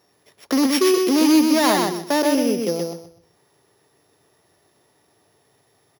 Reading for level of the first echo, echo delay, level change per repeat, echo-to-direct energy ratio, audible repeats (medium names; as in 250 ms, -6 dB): -3.5 dB, 126 ms, -12.0 dB, -3.0 dB, 3